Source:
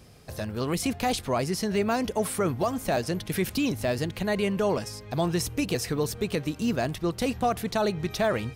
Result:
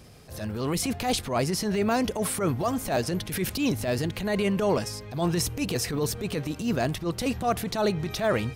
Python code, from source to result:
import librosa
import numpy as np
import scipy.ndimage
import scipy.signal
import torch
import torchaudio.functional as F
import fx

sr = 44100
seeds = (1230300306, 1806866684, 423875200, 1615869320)

y = fx.transient(x, sr, attack_db=-11, sustain_db=1)
y = y * 10.0 ** (2.5 / 20.0)